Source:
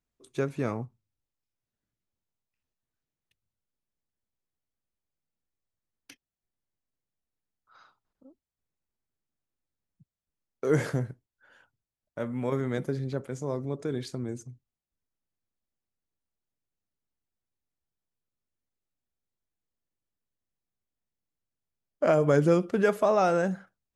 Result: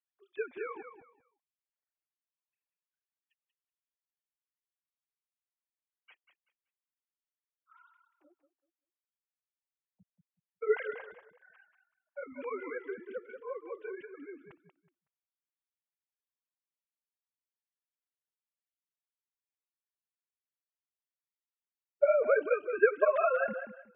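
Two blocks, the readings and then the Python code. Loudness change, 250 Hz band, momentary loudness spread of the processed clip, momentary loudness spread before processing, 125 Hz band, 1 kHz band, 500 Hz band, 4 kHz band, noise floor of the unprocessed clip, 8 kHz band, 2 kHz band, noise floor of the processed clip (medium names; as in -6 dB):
-3.5 dB, -18.0 dB, 20 LU, 15 LU, under -30 dB, -5.0 dB, -3.0 dB, under -15 dB, under -85 dBFS, under -25 dB, +1.0 dB, under -85 dBFS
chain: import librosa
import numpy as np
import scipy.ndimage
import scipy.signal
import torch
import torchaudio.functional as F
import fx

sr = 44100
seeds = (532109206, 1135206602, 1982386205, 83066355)

y = fx.sine_speech(x, sr)
y = fx.peak_eq(y, sr, hz=270.0, db=-13.5, octaves=1.8)
y = fx.echo_feedback(y, sr, ms=188, feedback_pct=23, wet_db=-9.0)
y = fx.flanger_cancel(y, sr, hz=1.8, depth_ms=7.3)
y = y * librosa.db_to_amplitude(3.5)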